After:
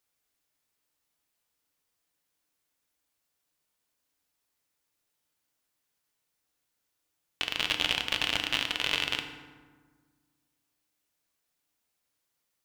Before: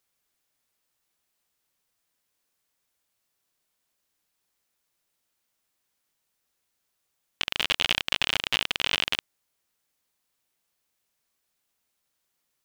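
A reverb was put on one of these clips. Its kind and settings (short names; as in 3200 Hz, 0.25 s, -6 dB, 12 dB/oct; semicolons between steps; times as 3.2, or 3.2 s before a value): FDN reverb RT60 1.5 s, low-frequency decay 1.4×, high-frequency decay 0.55×, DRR 5 dB; gain -3.5 dB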